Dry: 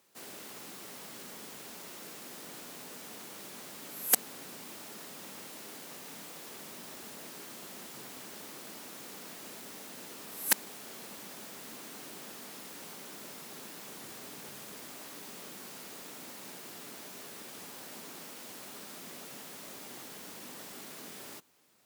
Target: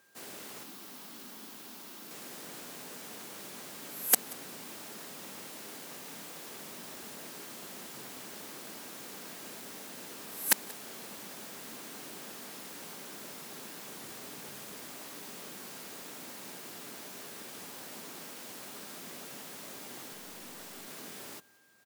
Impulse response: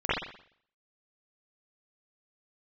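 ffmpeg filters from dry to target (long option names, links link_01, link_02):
-filter_complex "[0:a]aeval=exprs='val(0)+0.000447*sin(2*PI*1600*n/s)':channel_layout=same,asettb=1/sr,asplit=3[link_01][link_02][link_03];[link_01]atrim=end=0.634[link_04];[link_02]atrim=start=0.63:end=2.11,asetpts=PTS-STARTPTS,afade=type=in:duration=0.004:curve=qsin,afade=type=out:start_time=1.476:duration=0.004:curve=qsin,equalizer=frequency=125:width_type=o:width=1:gain=-11,equalizer=frequency=250:width_type=o:width=1:gain=5,equalizer=frequency=500:width_type=o:width=1:gain=-8,equalizer=frequency=2000:width_type=o:width=1:gain=-5,equalizer=frequency=8000:width_type=o:width=1:gain=-5[link_05];[link_03]atrim=start=2.106[link_06];[link_04][link_05]acrossfade=duration=0.004:curve1=hsin:curve2=qsin[link_07];[link_07][link_06]acrossfade=duration=0.004:curve1=qsin:curve2=hsin,asettb=1/sr,asplit=3[link_08][link_09][link_10];[link_08]atrim=end=20.134[link_11];[link_09]atrim=start=20.13:end=20.88,asetpts=PTS-STARTPTS,afade=type=in:duration=0.004:curve=qsin,afade=type=out:start_time=0.746:duration=0.004:curve=qsin,aeval=exprs='clip(val(0),-1,0.00398)':channel_layout=same[link_12];[link_10]atrim=start=20.876[link_13];[link_11][link_12]acrossfade=duration=0.004:curve1=hsin:curve2=qsin[link_14];[link_14][link_13]acrossfade=duration=0.004:curve1=qsin:curve2=hsin,asplit=2[link_15][link_16];[link_16]aecho=0:1:182:0.0708[link_17];[link_15][link_17]amix=inputs=2:normalize=0,volume=1dB"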